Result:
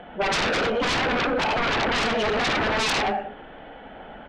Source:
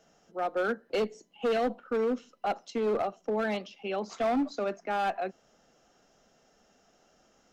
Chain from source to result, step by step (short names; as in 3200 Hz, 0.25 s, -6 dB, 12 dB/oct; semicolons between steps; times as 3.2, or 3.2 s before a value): steep low-pass 2900 Hz 48 dB/oct; de-hum 71 Hz, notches 5; in parallel at -11.5 dB: soft clip -37 dBFS, distortion -7 dB; on the sum: tapped delay 84/89/170/363 ms -12/-19/-4/-17.5 dB; speed mistake 44.1 kHz file played as 48 kHz; low shelf 78 Hz +4.5 dB; on a send at -5 dB: reverb, pre-delay 39 ms; on the sum: plain phase-vocoder stretch 0.62×; sine folder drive 14 dB, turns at -20 dBFS; compressor 4:1, threshold -27 dBFS, peak gain reduction 5 dB; gain +4.5 dB